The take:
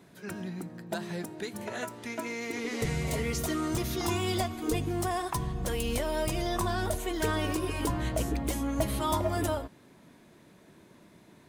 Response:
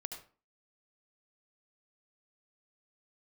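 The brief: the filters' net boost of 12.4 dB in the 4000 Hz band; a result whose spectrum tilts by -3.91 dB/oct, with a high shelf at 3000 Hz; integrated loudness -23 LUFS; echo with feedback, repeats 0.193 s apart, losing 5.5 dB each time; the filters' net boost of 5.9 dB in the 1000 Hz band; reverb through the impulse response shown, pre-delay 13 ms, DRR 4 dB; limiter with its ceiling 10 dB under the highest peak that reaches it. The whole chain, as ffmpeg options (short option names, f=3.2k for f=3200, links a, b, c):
-filter_complex "[0:a]equalizer=f=1k:t=o:g=6,highshelf=f=3k:g=8.5,equalizer=f=4k:t=o:g=9,alimiter=limit=-19dB:level=0:latency=1,aecho=1:1:193|386|579|772|965|1158|1351:0.531|0.281|0.149|0.079|0.0419|0.0222|0.0118,asplit=2[a][b];[1:a]atrim=start_sample=2205,adelay=13[c];[b][c]afir=irnorm=-1:irlink=0,volume=-2dB[d];[a][d]amix=inputs=2:normalize=0,volume=3dB"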